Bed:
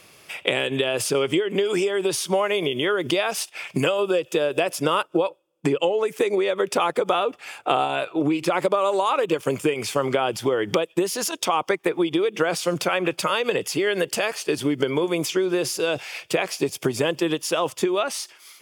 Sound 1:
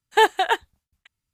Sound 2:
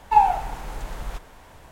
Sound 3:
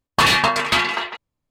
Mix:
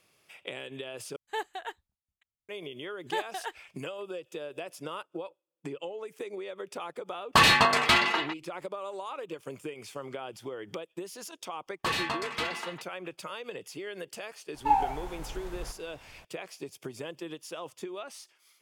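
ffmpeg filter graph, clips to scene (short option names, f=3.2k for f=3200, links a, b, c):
-filter_complex "[1:a]asplit=2[a][b];[3:a]asplit=2[c][d];[0:a]volume=-17dB,asplit=2[e][f];[e]atrim=end=1.164[g];[a]atrim=end=1.33,asetpts=PTS-STARTPTS,volume=-18dB[h];[f]atrim=start=2.486[i];[b]atrim=end=1.33,asetpts=PTS-STARTPTS,volume=-16.5dB,afade=t=in:d=0.004:c=hsin,afade=t=out:st=1.326:d=0.004:c=hsin,adelay=2950[j];[c]atrim=end=1.5,asetpts=PTS-STARTPTS,volume=-4dB,afade=t=in:d=0.004:c=hsin,afade=t=out:st=1.496:d=0.004:c=hsin,adelay=7170[k];[d]atrim=end=1.5,asetpts=PTS-STARTPTS,volume=-15dB,afade=t=in:d=0.004:c=hsin,afade=t=out:st=1.496:d=0.004:c=hsin,adelay=11660[l];[2:a]atrim=end=1.71,asetpts=PTS-STARTPTS,volume=-8dB,afade=t=in:d=0.004:c=hsin,afade=t=out:st=1.706:d=0.004:c=hsin,adelay=14540[m];[g][h]acrossfade=d=0.004:c1=hsin:c2=hsin[n];[n][i]acrossfade=d=0.004:c1=hsin:c2=hsin[o];[o][j][k][l][m]amix=inputs=5:normalize=0"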